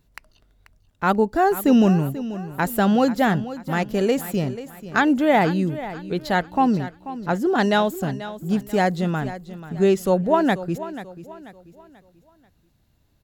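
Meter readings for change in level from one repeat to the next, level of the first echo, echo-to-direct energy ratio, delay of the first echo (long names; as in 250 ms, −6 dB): −8.5 dB, −14.0 dB, −13.5 dB, 487 ms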